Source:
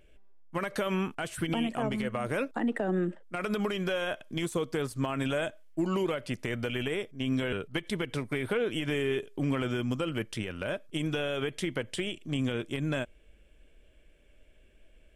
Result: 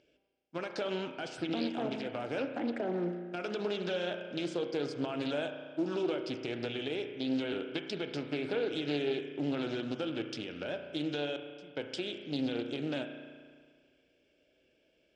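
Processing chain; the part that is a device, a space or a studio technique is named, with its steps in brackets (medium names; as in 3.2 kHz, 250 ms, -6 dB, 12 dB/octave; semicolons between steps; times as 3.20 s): 11.36–11.77 s: amplifier tone stack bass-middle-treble 10-0-1; spring tank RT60 1.8 s, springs 34 ms, chirp 70 ms, DRR 6 dB; full-range speaker at full volume (loudspeaker Doppler distortion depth 0.35 ms; cabinet simulation 180–6300 Hz, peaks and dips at 210 Hz -6 dB, 290 Hz +4 dB, 1.1 kHz -9 dB, 1.9 kHz -8 dB, 5 kHz +10 dB); trim -3.5 dB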